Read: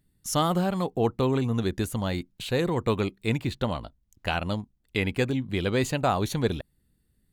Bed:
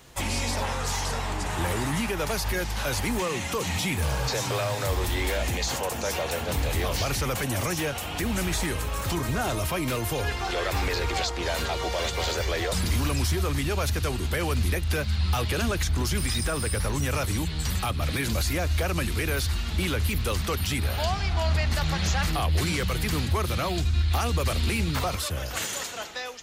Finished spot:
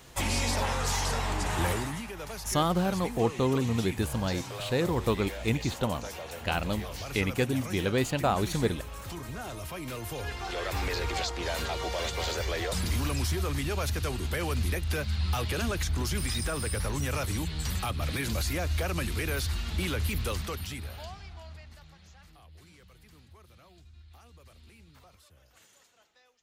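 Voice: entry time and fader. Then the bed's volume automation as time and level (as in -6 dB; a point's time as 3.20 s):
2.20 s, -2.0 dB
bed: 1.69 s -0.5 dB
2.04 s -11.5 dB
9.59 s -11.5 dB
10.91 s -4 dB
20.26 s -4 dB
22.03 s -29.5 dB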